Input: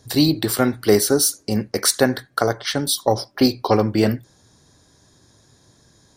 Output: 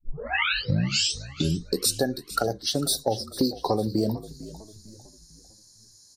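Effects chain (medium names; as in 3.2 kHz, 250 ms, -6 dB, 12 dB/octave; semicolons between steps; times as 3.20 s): tape start-up on the opening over 1.96 s; spectral noise reduction 22 dB; compression 4:1, threshold -29 dBFS, peak gain reduction 15.5 dB; frequency-shifting echo 450 ms, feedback 43%, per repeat -55 Hz, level -16 dB; trim +5.5 dB; Vorbis 64 kbps 48 kHz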